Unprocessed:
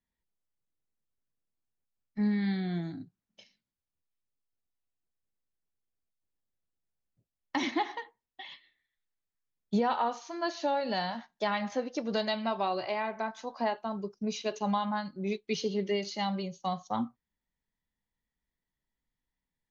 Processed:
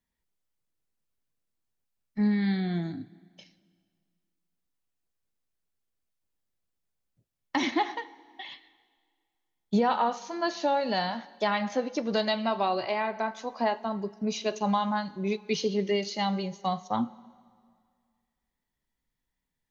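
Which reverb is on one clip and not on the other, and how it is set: plate-style reverb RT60 2 s, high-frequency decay 0.9×, DRR 18.5 dB; trim +3.5 dB

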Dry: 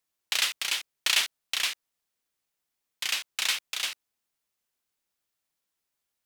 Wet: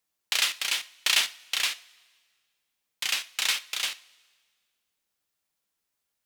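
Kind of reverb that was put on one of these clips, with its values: two-slope reverb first 0.32 s, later 1.7 s, from -18 dB, DRR 11.5 dB; trim +1 dB

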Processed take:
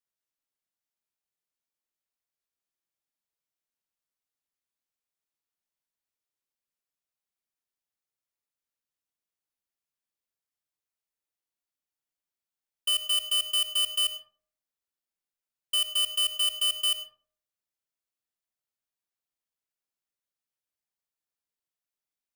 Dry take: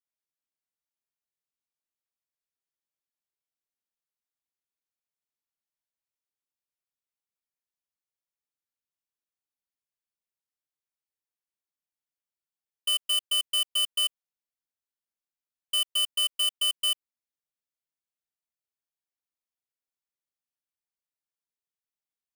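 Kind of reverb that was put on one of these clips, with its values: algorithmic reverb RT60 0.5 s, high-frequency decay 0.45×, pre-delay 50 ms, DRR 9.5 dB

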